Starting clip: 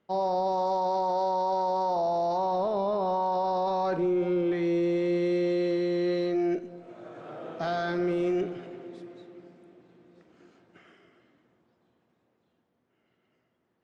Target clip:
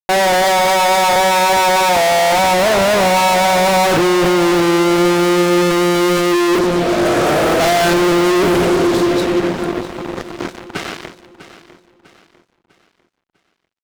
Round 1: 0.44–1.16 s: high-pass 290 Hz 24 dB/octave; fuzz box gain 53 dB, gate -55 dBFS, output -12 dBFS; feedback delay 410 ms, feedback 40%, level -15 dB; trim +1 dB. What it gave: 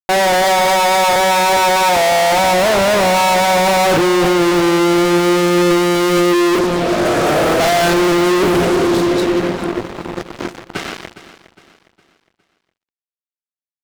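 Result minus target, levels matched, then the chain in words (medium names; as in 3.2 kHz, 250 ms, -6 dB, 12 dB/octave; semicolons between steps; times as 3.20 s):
echo 239 ms early
0.44–1.16 s: high-pass 290 Hz 24 dB/octave; fuzz box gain 53 dB, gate -55 dBFS, output -12 dBFS; feedback delay 649 ms, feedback 40%, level -15 dB; trim +1 dB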